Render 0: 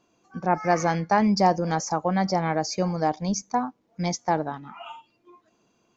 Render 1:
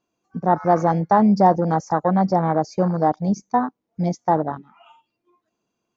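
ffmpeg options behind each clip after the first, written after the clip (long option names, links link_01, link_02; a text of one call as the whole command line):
ffmpeg -i in.wav -af "acontrast=47,afwtdn=0.0891" out.wav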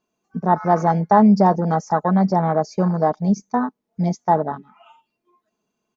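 ffmpeg -i in.wav -af "aecho=1:1:4.7:0.44" out.wav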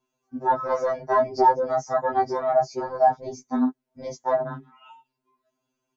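ffmpeg -i in.wav -af "afftfilt=real='re*2.45*eq(mod(b,6),0)':imag='im*2.45*eq(mod(b,6),0)':win_size=2048:overlap=0.75" out.wav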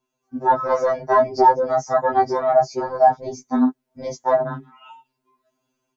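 ffmpeg -i in.wav -af "dynaudnorm=framelen=190:gausssize=3:maxgain=5dB" out.wav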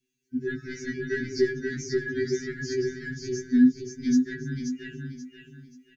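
ffmpeg -i in.wav -af "asuperstop=centerf=790:order=20:qfactor=0.65,aecho=1:1:532|1064|1596|2128:0.631|0.196|0.0606|0.0188" out.wav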